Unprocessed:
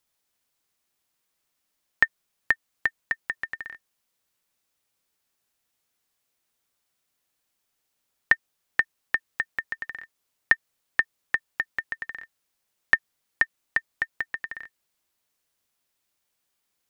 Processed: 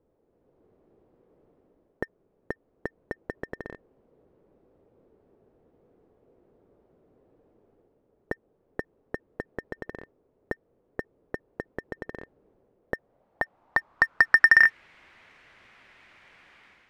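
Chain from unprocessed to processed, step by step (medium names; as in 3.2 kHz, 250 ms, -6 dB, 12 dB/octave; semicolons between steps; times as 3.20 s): level rider gain up to 12 dB; power-law waveshaper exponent 0.7; low-pass sweep 440 Hz -> 2.1 kHz, 12.77–14.79 s; waveshaping leveller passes 1; trim -3 dB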